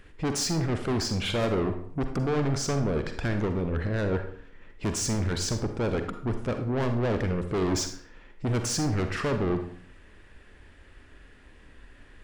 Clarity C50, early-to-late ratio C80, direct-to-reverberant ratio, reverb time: 8.0 dB, 11.5 dB, 6.5 dB, 0.55 s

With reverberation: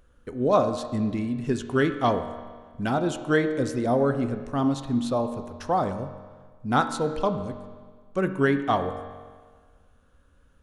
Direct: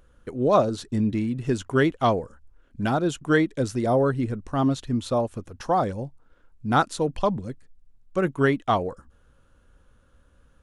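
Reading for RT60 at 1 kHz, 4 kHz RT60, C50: 1.6 s, 1.5 s, 9.5 dB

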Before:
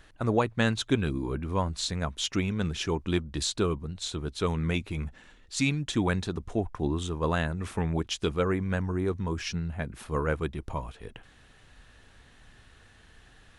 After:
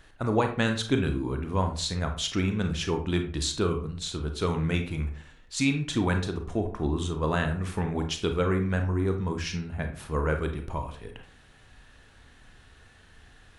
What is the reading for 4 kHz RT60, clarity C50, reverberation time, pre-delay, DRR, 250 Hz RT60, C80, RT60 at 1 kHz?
0.30 s, 8.5 dB, 0.45 s, 29 ms, 5.0 dB, 0.50 s, 13.5 dB, 0.45 s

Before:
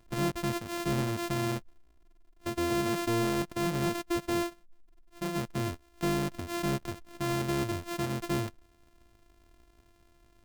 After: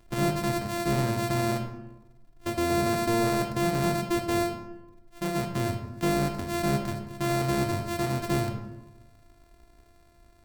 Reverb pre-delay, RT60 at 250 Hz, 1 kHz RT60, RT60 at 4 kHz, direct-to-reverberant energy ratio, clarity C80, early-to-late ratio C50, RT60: 18 ms, 1.2 s, 1.0 s, 0.60 s, 4.5 dB, 9.5 dB, 7.5 dB, 1.1 s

